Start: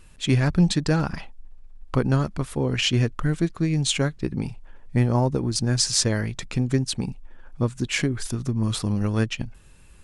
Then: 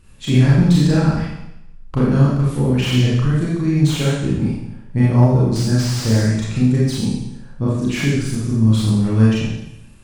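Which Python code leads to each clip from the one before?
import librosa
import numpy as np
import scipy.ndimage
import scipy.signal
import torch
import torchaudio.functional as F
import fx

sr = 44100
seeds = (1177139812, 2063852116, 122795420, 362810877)

y = fx.peak_eq(x, sr, hz=110.0, db=8.0, octaves=2.9)
y = fx.rev_schroeder(y, sr, rt60_s=0.87, comb_ms=28, drr_db=-7.0)
y = fx.slew_limit(y, sr, full_power_hz=390.0)
y = y * 10.0 ** (-5.0 / 20.0)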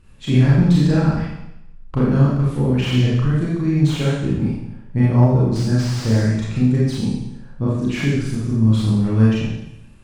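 y = fx.high_shelf(x, sr, hz=5100.0, db=-9.0)
y = y * 10.0 ** (-1.0 / 20.0)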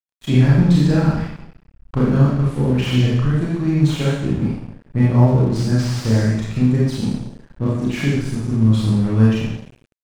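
y = np.sign(x) * np.maximum(np.abs(x) - 10.0 ** (-37.0 / 20.0), 0.0)
y = y * 10.0 ** (1.0 / 20.0)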